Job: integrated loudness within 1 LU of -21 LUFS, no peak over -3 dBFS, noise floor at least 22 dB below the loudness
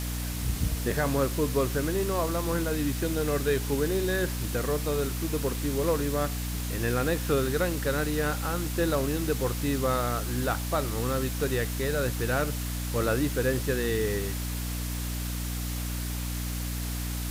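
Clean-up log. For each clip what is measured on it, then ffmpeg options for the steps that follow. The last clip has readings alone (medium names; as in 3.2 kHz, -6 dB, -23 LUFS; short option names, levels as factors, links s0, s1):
hum 60 Hz; highest harmonic 300 Hz; hum level -30 dBFS; noise floor -32 dBFS; noise floor target -51 dBFS; loudness -28.5 LUFS; peak level -13.5 dBFS; loudness target -21.0 LUFS
-> -af "bandreject=f=60:t=h:w=4,bandreject=f=120:t=h:w=4,bandreject=f=180:t=h:w=4,bandreject=f=240:t=h:w=4,bandreject=f=300:t=h:w=4"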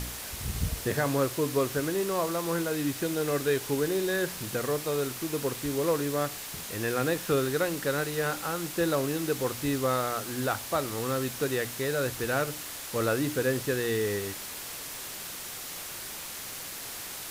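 hum not found; noise floor -40 dBFS; noise floor target -52 dBFS
-> -af "afftdn=nr=12:nf=-40"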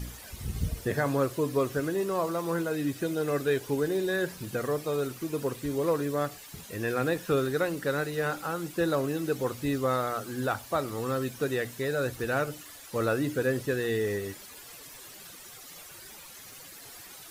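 noise floor -48 dBFS; noise floor target -52 dBFS
-> -af "afftdn=nr=6:nf=-48"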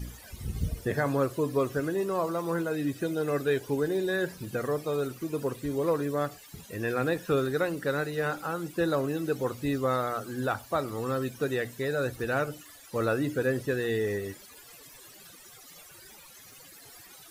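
noise floor -51 dBFS; noise floor target -52 dBFS
-> -af "afftdn=nr=6:nf=-51"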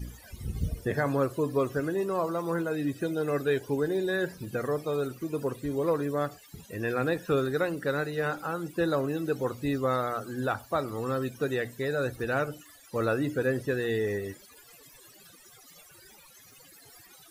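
noise floor -55 dBFS; loudness -30.0 LUFS; peak level -15.0 dBFS; loudness target -21.0 LUFS
-> -af "volume=2.82"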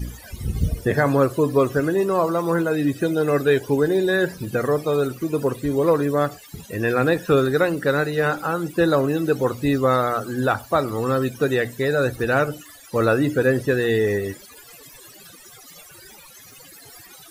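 loudness -21.0 LUFS; peak level -6.0 dBFS; noise floor -46 dBFS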